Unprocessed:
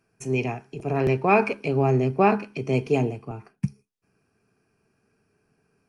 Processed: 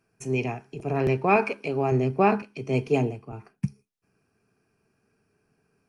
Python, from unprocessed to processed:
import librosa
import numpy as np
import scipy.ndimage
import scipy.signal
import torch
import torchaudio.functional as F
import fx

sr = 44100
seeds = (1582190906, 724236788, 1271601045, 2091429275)

y = fx.low_shelf(x, sr, hz=160.0, db=-11.0, at=(1.36, 1.92))
y = fx.band_widen(y, sr, depth_pct=40, at=(2.42, 3.33))
y = F.gain(torch.from_numpy(y), -1.5).numpy()